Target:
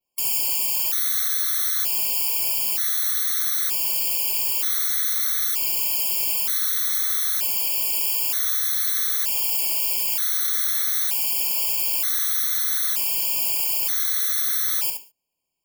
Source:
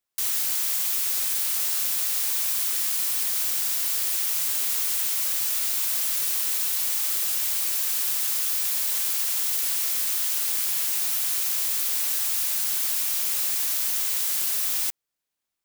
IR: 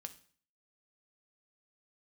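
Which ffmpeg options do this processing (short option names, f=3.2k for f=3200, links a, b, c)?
-filter_complex "[0:a]asplit=2[a][b];[1:a]atrim=start_sample=2205,atrim=end_sample=6615,adelay=68[c];[b][c]afir=irnorm=-1:irlink=0,volume=-0.5dB[d];[a][d]amix=inputs=2:normalize=0,adynamicequalizer=threshold=0.00794:dfrequency=8000:dqfactor=1.9:tfrequency=8000:tqfactor=1.9:attack=5:release=100:ratio=0.375:range=2.5:mode=cutabove:tftype=bell,afftfilt=real='re*gt(sin(2*PI*0.54*pts/sr)*(1-2*mod(floor(b*sr/1024/1100),2)),0)':imag='im*gt(sin(2*PI*0.54*pts/sr)*(1-2*mod(floor(b*sr/1024/1100),2)),0)':win_size=1024:overlap=0.75,volume=5dB"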